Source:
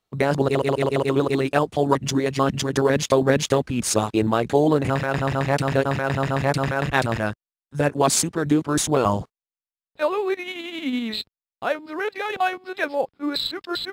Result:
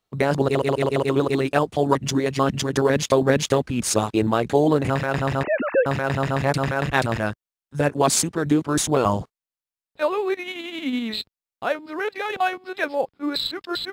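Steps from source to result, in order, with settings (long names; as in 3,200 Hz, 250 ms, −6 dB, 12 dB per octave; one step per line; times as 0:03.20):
0:05.43–0:05.86: three sine waves on the formant tracks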